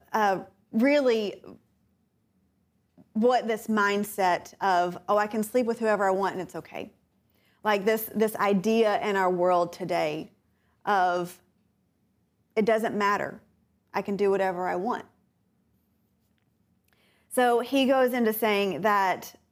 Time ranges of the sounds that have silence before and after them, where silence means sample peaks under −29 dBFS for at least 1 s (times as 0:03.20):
0:03.16–0:11.25
0:12.57–0:15.00